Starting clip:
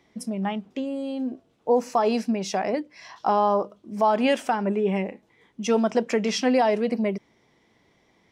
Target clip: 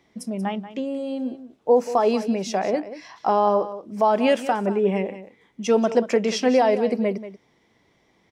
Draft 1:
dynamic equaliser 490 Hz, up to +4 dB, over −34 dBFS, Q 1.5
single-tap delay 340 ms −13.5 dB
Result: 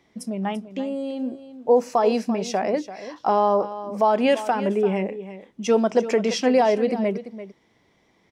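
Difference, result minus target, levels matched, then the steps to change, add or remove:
echo 156 ms late
change: single-tap delay 184 ms −13.5 dB

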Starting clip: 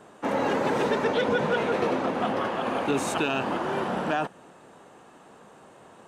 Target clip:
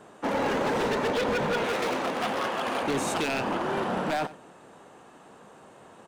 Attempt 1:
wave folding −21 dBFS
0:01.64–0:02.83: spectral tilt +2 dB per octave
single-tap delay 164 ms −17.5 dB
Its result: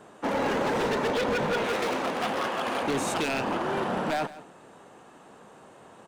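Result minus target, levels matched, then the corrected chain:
echo 73 ms late
wave folding −21 dBFS
0:01.64–0:02.83: spectral tilt +2 dB per octave
single-tap delay 91 ms −17.5 dB

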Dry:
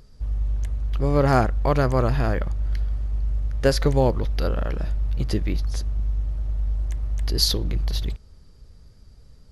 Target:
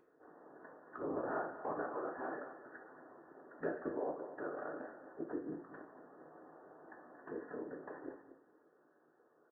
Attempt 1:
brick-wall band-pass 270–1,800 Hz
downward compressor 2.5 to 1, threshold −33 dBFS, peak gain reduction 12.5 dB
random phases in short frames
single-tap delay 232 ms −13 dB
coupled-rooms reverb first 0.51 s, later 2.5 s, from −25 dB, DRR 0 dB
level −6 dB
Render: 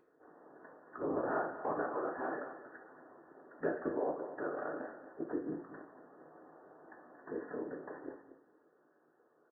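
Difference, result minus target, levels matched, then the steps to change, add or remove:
downward compressor: peak gain reduction −4 dB
change: downward compressor 2.5 to 1, threshold −39.5 dBFS, peak gain reduction 16.5 dB

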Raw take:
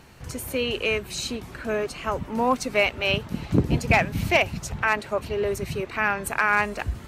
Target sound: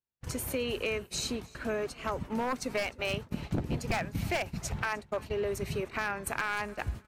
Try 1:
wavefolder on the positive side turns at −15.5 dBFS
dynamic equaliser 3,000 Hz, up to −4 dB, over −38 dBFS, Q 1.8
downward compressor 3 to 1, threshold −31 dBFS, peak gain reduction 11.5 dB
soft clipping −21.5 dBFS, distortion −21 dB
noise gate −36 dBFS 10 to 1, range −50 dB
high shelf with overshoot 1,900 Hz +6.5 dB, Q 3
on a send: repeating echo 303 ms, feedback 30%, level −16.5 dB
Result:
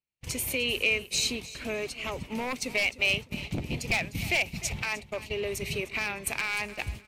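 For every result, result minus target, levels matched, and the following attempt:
soft clipping: distortion +20 dB; echo-to-direct +6.5 dB; 4,000 Hz band +4.0 dB
wavefolder on the positive side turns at −15.5 dBFS
dynamic equaliser 3,000 Hz, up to −4 dB, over −38 dBFS, Q 1.8
downward compressor 3 to 1, threshold −31 dBFS, peak gain reduction 11.5 dB
soft clipping −10 dBFS, distortion −41 dB
noise gate −36 dBFS 10 to 1, range −50 dB
high shelf with overshoot 1,900 Hz +6.5 dB, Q 3
on a send: repeating echo 303 ms, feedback 30%, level −16.5 dB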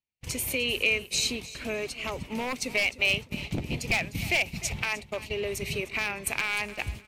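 echo-to-direct +6.5 dB; 4,000 Hz band +4.0 dB
wavefolder on the positive side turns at −15.5 dBFS
dynamic equaliser 3,000 Hz, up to −4 dB, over −38 dBFS, Q 1.8
downward compressor 3 to 1, threshold −31 dBFS, peak gain reduction 11.5 dB
soft clipping −10 dBFS, distortion −41 dB
noise gate −36 dBFS 10 to 1, range −50 dB
high shelf with overshoot 1,900 Hz +6.5 dB, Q 3
on a send: repeating echo 303 ms, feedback 30%, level −23 dB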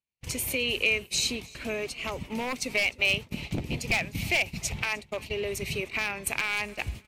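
4,000 Hz band +4.0 dB
wavefolder on the positive side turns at −15.5 dBFS
dynamic equaliser 3,000 Hz, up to −4 dB, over −38 dBFS, Q 1.8
downward compressor 3 to 1, threshold −31 dBFS, peak gain reduction 11.5 dB
soft clipping −10 dBFS, distortion −41 dB
noise gate −36 dBFS 10 to 1, range −50 dB
on a send: repeating echo 303 ms, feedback 30%, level −23 dB

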